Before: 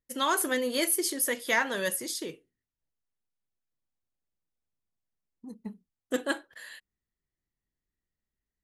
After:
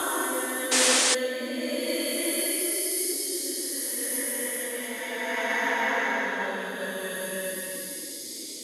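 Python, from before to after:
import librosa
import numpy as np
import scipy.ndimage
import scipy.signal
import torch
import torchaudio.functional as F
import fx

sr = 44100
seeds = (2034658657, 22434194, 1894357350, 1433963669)

y = fx.quant_dither(x, sr, seeds[0], bits=10, dither='none')
y = fx.paulstretch(y, sr, seeds[1], factor=4.8, window_s=0.5, from_s=0.36)
y = fx.spec_paint(y, sr, seeds[2], shape='noise', start_s=0.71, length_s=0.44, low_hz=290.0, high_hz=9800.0, level_db=-24.0)
y = fx.band_widen(y, sr, depth_pct=40)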